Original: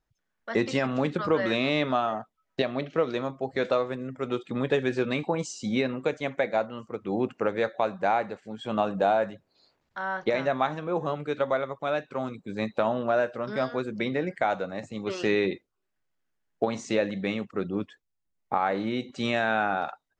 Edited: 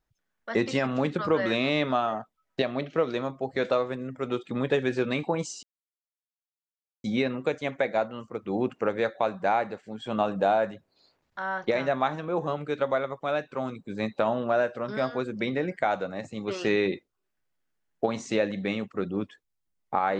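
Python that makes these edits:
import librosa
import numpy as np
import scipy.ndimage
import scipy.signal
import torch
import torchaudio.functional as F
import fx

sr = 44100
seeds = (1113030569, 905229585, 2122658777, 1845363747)

y = fx.edit(x, sr, fx.insert_silence(at_s=5.63, length_s=1.41), tone=tone)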